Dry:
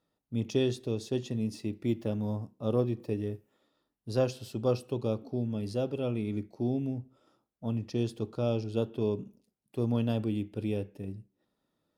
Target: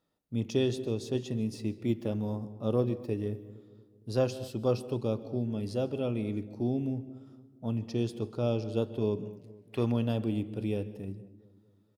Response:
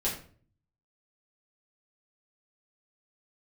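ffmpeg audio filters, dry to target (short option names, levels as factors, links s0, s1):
-filter_complex "[0:a]asettb=1/sr,asplit=3[s0][s1][s2];[s0]atrim=end=9.244[s3];[s1]atrim=start=9.24:end=9.92,asetpts=PTS-STARTPTS,afade=t=in:d=0.004:c=qsin,afade=t=out:st=0.676:d=0.004:c=qsin,equalizer=f=2100:w=0.59:g=14[s4];[s2]atrim=start=9.916[s5];[s3][s4]acrossfade=d=0.004:c1=hsin:c2=qsin[s6];[s6][s5]acrossfade=d=0.004:c1=qsin:c2=hsin,asplit=2[s7][s8];[s8]adelay=231,lowpass=f=940:p=1,volume=0.141,asplit=2[s9][s10];[s10]adelay=231,lowpass=f=940:p=1,volume=0.54,asplit=2[s11][s12];[s12]adelay=231,lowpass=f=940:p=1,volume=0.54,asplit=2[s13][s14];[s14]adelay=231,lowpass=f=940:p=1,volume=0.54,asplit=2[s15][s16];[s16]adelay=231,lowpass=f=940:p=1,volume=0.54[s17];[s7][s9][s11][s13][s15][s17]amix=inputs=6:normalize=0,asplit=2[s18][s19];[1:a]atrim=start_sample=2205,adelay=131[s20];[s19][s20]afir=irnorm=-1:irlink=0,volume=0.0596[s21];[s18][s21]amix=inputs=2:normalize=0"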